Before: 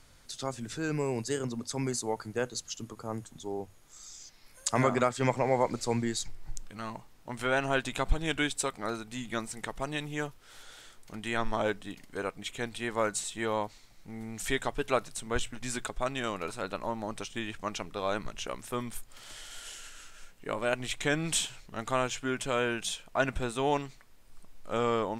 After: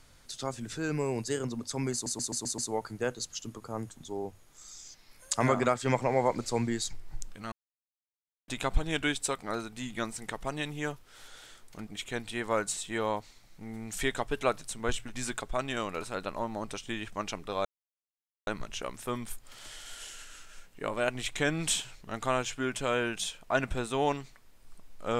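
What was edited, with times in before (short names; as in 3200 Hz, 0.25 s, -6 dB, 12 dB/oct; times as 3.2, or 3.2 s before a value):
1.93 stutter 0.13 s, 6 plays
6.87–7.83 mute
11.22–12.34 cut
18.12 insert silence 0.82 s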